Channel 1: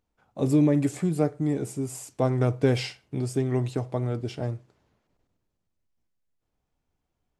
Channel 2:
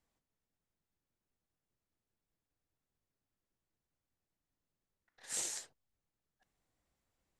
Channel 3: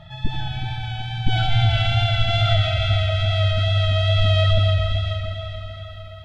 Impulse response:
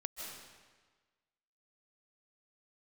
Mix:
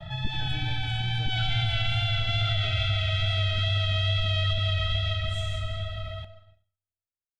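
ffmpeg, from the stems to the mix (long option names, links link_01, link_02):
-filter_complex "[0:a]volume=-17dB,asplit=2[link_01][link_02];[1:a]volume=-7dB,asplit=2[link_03][link_04];[link_04]volume=-8dB[link_05];[2:a]alimiter=limit=-10dB:level=0:latency=1:release=258,volume=2dB,asplit=2[link_06][link_07];[link_07]volume=-8dB[link_08];[link_02]apad=whole_len=326314[link_09];[link_03][link_09]sidechaincompress=threshold=-58dB:ratio=8:attack=16:release=1300[link_10];[3:a]atrim=start_sample=2205[link_11];[link_05][link_08]amix=inputs=2:normalize=0[link_12];[link_12][link_11]afir=irnorm=-1:irlink=0[link_13];[link_01][link_10][link_06][link_13]amix=inputs=4:normalize=0,agate=range=-33dB:threshold=-40dB:ratio=3:detection=peak,acrossover=split=200|1600[link_14][link_15][link_16];[link_14]acompressor=threshold=-27dB:ratio=4[link_17];[link_15]acompressor=threshold=-42dB:ratio=4[link_18];[link_16]acompressor=threshold=-27dB:ratio=4[link_19];[link_17][link_18][link_19]amix=inputs=3:normalize=0,highshelf=frequency=4800:gain=-5.5"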